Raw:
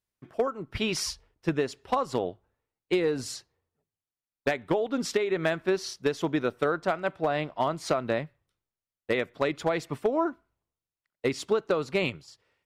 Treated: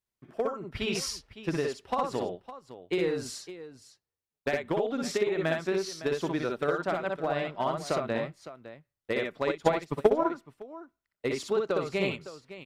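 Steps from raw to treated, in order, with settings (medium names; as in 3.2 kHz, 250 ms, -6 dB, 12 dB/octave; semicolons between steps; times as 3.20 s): multi-tap echo 57/62/559 ms -9/-3.5/-14 dB; 9.49–10.30 s: transient shaper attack +10 dB, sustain -11 dB; trim -4 dB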